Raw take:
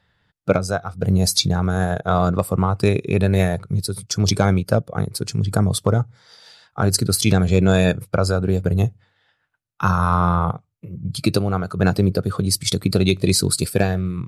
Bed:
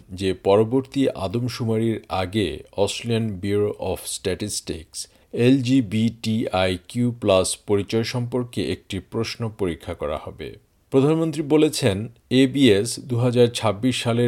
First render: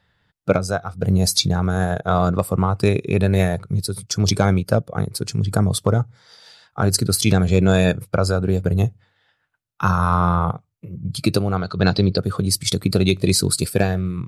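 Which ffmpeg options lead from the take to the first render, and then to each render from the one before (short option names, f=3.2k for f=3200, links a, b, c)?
-filter_complex "[0:a]asettb=1/sr,asplit=3[a][b][c];[a]atrim=end=11.564[d];[b]atrim=start=11.56:end=12.18,asetpts=PTS-STARTPTS,afade=t=in:d=0.004:c=qsin,afade=t=out:st=0.616:d=0.004:c=qsin,lowpass=f=4.2k:t=q:w=4.4[e];[c]atrim=start=12.176[f];[d][e]acrossfade=d=0.004:c1=hsin:c2=qsin[g];[g][f]acrossfade=d=0.004:c1=qsin:c2=hsin"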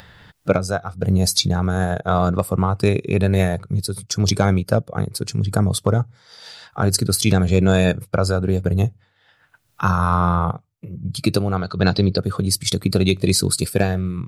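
-af "acompressor=mode=upward:threshold=-30dB:ratio=2.5"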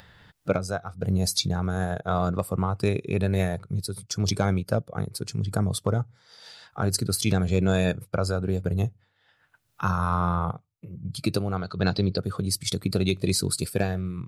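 -af "volume=-7dB"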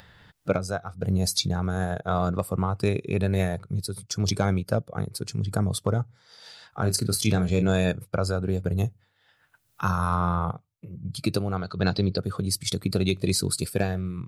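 -filter_complex "[0:a]asettb=1/sr,asplit=3[a][b][c];[a]atrim=end=6.824[d];[b]atrim=start=6.82:end=7.69,asetpts=PTS-STARTPTS,afade=t=in:d=0.004:c=qsin,afade=t=out:st=0.866:d=0.004:c=qsin,asplit=2[e][f];[f]adelay=28,volume=-9dB[g];[e][g]amix=inputs=2:normalize=0,atrim=end_sample=38367[h];[c]atrim=start=7.686[i];[d][h]acrossfade=d=0.004:c1=hsin:c2=qsin[j];[j][i]acrossfade=d=0.004:c1=qsin:c2=hsin,asettb=1/sr,asplit=3[k][l][m];[k]atrim=end=8.784[n];[l]atrim=start=8.78:end=10.16,asetpts=PTS-STARTPTS,afade=t=in:d=0.004:c=qsin,afade=t=out:st=1.376:d=0.004:c=qsin,highshelf=f=6.7k:g=7[o];[m]atrim=start=10.156[p];[n][o]acrossfade=d=0.004:c1=hsin:c2=qsin[q];[q][p]acrossfade=d=0.004:c1=qsin:c2=hsin"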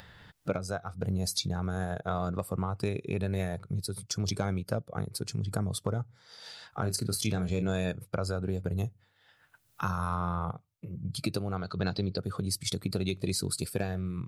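-af "acompressor=threshold=-32dB:ratio=2"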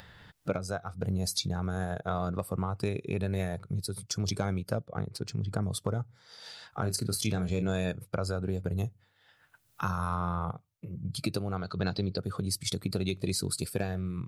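-filter_complex "[0:a]asettb=1/sr,asplit=3[a][b][c];[a]atrim=end=2.104[d];[b]atrim=start=2.1:end=2.53,asetpts=PTS-STARTPTS,afade=t=in:d=0.004:c=qsin,afade=t=out:st=0.426:d=0.004:c=qsin,bandreject=f=7.3k:w=12[e];[c]atrim=start=2.526[f];[d][e]acrossfade=d=0.004:c1=hsin:c2=qsin[g];[g][f]acrossfade=d=0.004:c1=qsin:c2=hsin,asettb=1/sr,asplit=3[h][i][j];[h]atrim=end=4.864[k];[i]atrim=start=4.86:end=5.63,asetpts=PTS-STARTPTS,afade=t=in:d=0.004:c=qsin,afade=t=out:st=0.766:d=0.004:c=qsin,adynamicsmooth=sensitivity=4.5:basefreq=5.2k[l];[j]atrim=start=5.626[m];[k][l]acrossfade=d=0.004:c1=hsin:c2=qsin[n];[n][m]acrossfade=d=0.004:c1=qsin:c2=hsin"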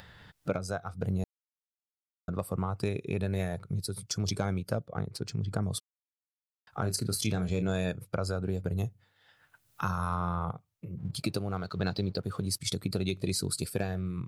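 -filter_complex "[0:a]asplit=3[a][b][c];[a]afade=t=out:st=10.97:d=0.02[d];[b]aeval=exprs='sgn(val(0))*max(abs(val(0))-0.00119,0)':c=same,afade=t=in:st=10.97:d=0.02,afade=t=out:st=12.59:d=0.02[e];[c]afade=t=in:st=12.59:d=0.02[f];[d][e][f]amix=inputs=3:normalize=0,asplit=5[g][h][i][j][k];[g]atrim=end=1.24,asetpts=PTS-STARTPTS,afade=t=out:st=1.236:d=0.004:c=hsin[l];[h]atrim=start=1.24:end=2.28,asetpts=PTS-STARTPTS,volume=0[m];[i]atrim=start=2.28:end=5.8,asetpts=PTS-STARTPTS,afade=t=in:d=0.004:c=hsin,afade=t=out:st=3.516:d=0.004:c=hsin[n];[j]atrim=start=5.8:end=6.67,asetpts=PTS-STARTPTS,volume=0[o];[k]atrim=start=6.67,asetpts=PTS-STARTPTS,afade=t=in:d=0.004:c=hsin[p];[l][m][n][o][p]concat=n=5:v=0:a=1"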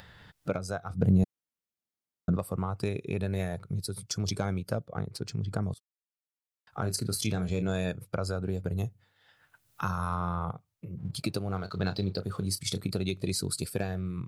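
-filter_complex "[0:a]asettb=1/sr,asplit=3[a][b][c];[a]atrim=end=0.904[d];[b]atrim=start=0.9:end=2.37,asetpts=PTS-STARTPTS,afade=t=in:d=0.004:c=qsin,afade=t=out:st=1.466:d=0.004:c=qsin,equalizer=f=180:t=o:w=2.6:g=10[e];[c]atrim=start=2.366[f];[d][e]acrossfade=d=0.004:c1=hsin:c2=qsin[g];[g][f]acrossfade=d=0.004:c1=qsin:c2=hsin,asettb=1/sr,asplit=3[h][i][j];[h]atrim=end=11.424[k];[i]atrim=start=11.42:end=12.9,asetpts=PTS-STARTPTS,afade=t=in:d=0.004:c=qsin,afade=t=out:st=1.476:d=0.004:c=qsin,asplit=2[l][m];[m]adelay=31,volume=-12.5dB[n];[l][n]amix=inputs=2:normalize=0,atrim=end_sample=65268[o];[j]atrim=start=12.896[p];[k][o]acrossfade=d=0.004:c1=hsin:c2=qsin[q];[q][p]acrossfade=d=0.004:c1=qsin:c2=hsin,asplit=2[r][s];[r]atrim=end=5.74,asetpts=PTS-STARTPTS,afade=t=out:st=5.736:d=0.004:c=hsin:silence=0.0794328[t];[s]atrim=start=5.74,asetpts=PTS-STARTPTS,afade=t=in:d=1.12:silence=0.0794328[u];[t][u]concat=n=2:v=0:a=1"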